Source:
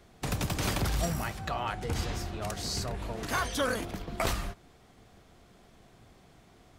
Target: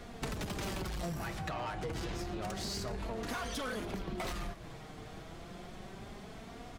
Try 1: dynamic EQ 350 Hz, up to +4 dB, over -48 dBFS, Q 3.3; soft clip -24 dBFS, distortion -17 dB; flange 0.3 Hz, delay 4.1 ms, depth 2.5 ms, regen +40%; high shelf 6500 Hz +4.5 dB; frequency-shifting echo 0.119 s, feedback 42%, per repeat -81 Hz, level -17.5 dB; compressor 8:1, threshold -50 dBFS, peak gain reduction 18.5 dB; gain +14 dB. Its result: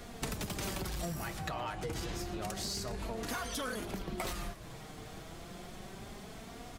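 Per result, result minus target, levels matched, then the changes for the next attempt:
soft clip: distortion -8 dB; 8000 Hz band +4.0 dB
change: soft clip -32.5 dBFS, distortion -8 dB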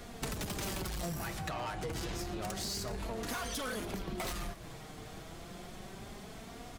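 8000 Hz band +4.5 dB
change: high shelf 6500 Hz -6 dB

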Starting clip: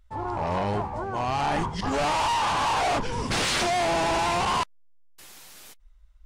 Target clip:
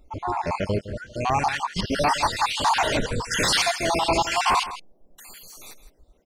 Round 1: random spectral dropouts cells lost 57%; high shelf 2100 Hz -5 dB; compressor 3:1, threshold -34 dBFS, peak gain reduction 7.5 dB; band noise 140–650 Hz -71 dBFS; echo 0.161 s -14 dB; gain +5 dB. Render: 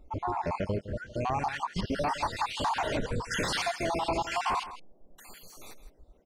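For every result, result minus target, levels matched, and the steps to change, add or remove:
compressor: peak gain reduction +7.5 dB; 4000 Hz band -3.0 dB
remove: compressor 3:1, threshold -34 dBFS, peak gain reduction 7.5 dB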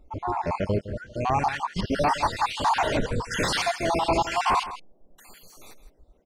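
4000 Hz band -4.0 dB
change: high shelf 2100 Hz +3.5 dB

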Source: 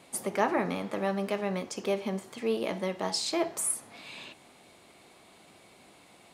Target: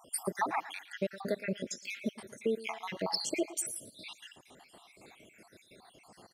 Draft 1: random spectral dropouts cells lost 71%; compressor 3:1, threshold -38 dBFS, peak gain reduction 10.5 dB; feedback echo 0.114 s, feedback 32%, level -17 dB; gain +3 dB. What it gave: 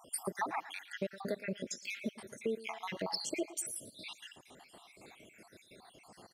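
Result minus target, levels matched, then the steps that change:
compressor: peak gain reduction +4.5 dB
change: compressor 3:1, threshold -31.5 dBFS, peak gain reduction 6 dB

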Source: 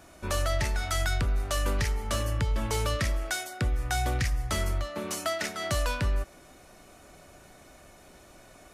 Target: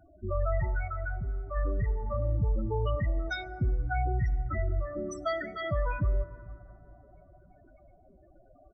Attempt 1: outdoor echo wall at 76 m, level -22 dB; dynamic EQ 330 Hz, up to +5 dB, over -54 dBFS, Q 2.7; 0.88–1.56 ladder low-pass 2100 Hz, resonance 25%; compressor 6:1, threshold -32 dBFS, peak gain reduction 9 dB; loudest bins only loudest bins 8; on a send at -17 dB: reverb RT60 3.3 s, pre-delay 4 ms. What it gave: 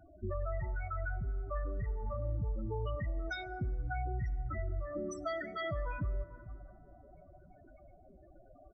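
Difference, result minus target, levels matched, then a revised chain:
compressor: peak gain reduction +9 dB
outdoor echo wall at 76 m, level -22 dB; dynamic EQ 330 Hz, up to +5 dB, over -54 dBFS, Q 2.7; 0.88–1.56 ladder low-pass 2100 Hz, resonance 25%; loudest bins only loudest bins 8; on a send at -17 dB: reverb RT60 3.3 s, pre-delay 4 ms

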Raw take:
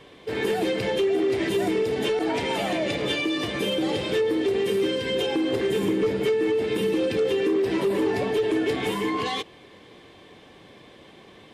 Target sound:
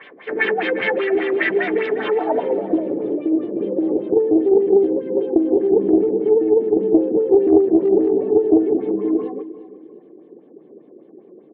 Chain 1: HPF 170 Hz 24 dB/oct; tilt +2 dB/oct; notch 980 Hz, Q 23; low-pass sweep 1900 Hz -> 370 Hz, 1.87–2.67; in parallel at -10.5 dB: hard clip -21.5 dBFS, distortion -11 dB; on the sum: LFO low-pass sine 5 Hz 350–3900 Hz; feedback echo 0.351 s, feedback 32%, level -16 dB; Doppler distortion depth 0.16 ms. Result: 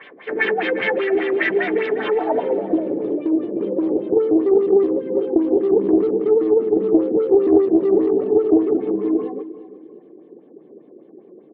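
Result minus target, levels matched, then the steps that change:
hard clip: distortion +23 dB
change: hard clip -14 dBFS, distortion -34 dB

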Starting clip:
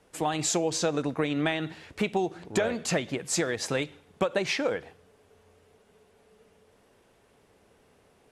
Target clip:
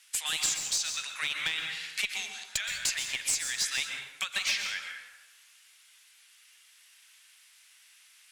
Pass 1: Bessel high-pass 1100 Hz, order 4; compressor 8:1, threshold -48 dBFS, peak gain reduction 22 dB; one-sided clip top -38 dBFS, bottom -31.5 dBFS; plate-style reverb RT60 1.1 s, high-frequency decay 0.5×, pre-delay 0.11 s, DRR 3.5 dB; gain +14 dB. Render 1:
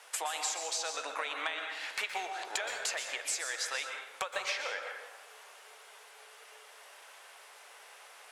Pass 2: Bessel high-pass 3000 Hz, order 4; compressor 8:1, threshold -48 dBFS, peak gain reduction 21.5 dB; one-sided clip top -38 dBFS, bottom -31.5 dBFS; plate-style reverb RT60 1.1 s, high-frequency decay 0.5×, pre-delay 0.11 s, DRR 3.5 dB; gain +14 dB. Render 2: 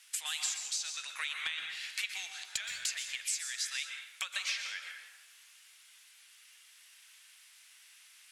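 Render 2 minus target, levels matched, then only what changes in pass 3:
compressor: peak gain reduction +6.5 dB
change: compressor 8:1, threshold -40.5 dBFS, peak gain reduction 15 dB

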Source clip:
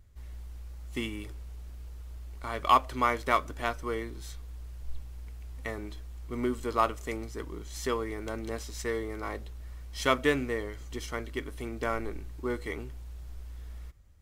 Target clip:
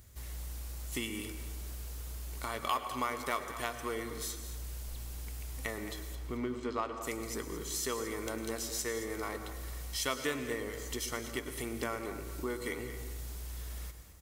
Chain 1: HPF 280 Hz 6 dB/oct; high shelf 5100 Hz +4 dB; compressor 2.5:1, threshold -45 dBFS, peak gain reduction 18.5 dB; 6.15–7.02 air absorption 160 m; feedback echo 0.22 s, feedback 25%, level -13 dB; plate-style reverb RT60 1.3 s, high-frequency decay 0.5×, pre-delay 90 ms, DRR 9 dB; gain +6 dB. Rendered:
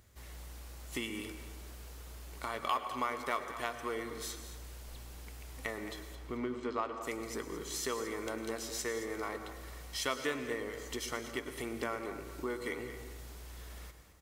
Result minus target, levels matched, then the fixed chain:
125 Hz band -4.5 dB; 8000 Hz band -2.5 dB
HPF 100 Hz 6 dB/oct; high shelf 5100 Hz +14 dB; compressor 2.5:1, threshold -45 dBFS, peak gain reduction 19 dB; 6.15–7.02 air absorption 160 m; feedback echo 0.22 s, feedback 25%, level -13 dB; plate-style reverb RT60 1.3 s, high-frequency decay 0.5×, pre-delay 90 ms, DRR 9 dB; gain +6 dB

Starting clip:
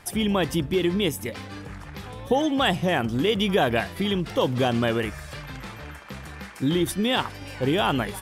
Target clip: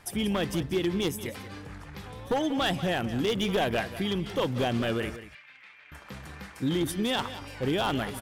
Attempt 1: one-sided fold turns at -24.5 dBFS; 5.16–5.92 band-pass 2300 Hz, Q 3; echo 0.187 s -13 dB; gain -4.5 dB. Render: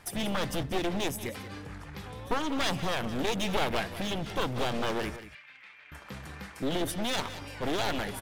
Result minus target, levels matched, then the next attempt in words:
one-sided fold: distortion +17 dB
one-sided fold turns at -15.5 dBFS; 5.16–5.92 band-pass 2300 Hz, Q 3; echo 0.187 s -13 dB; gain -4.5 dB

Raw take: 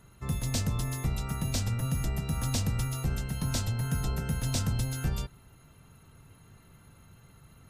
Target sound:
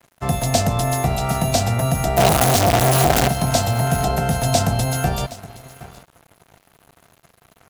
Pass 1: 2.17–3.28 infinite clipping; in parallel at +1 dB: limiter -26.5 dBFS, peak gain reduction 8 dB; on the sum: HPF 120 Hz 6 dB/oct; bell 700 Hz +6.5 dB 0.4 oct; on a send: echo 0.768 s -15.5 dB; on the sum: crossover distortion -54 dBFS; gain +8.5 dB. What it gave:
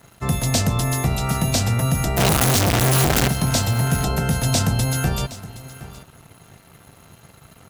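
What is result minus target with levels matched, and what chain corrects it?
500 Hz band -4.5 dB; crossover distortion: distortion -6 dB
2.17–3.28 infinite clipping; in parallel at +1 dB: limiter -26.5 dBFS, peak gain reduction 8 dB; on the sum: HPF 120 Hz 6 dB/oct; bell 700 Hz +18 dB 0.4 oct; on a send: echo 0.768 s -15.5 dB; on the sum: crossover distortion -45.5 dBFS; gain +8.5 dB

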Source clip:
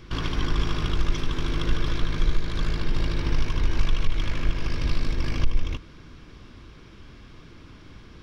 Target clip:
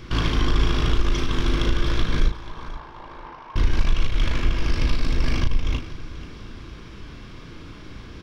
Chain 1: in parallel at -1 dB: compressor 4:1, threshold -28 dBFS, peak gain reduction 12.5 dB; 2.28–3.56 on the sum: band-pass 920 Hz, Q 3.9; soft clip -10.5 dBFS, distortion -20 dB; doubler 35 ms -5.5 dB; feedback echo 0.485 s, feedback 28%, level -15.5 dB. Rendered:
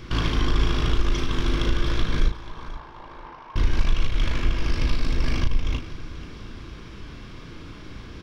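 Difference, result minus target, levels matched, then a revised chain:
compressor: peak gain reduction +6 dB
in parallel at -1 dB: compressor 4:1, threshold -20 dBFS, peak gain reduction 6.5 dB; 2.28–3.56 on the sum: band-pass 920 Hz, Q 3.9; soft clip -10.5 dBFS, distortion -18 dB; doubler 35 ms -5.5 dB; feedback echo 0.485 s, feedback 28%, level -15.5 dB

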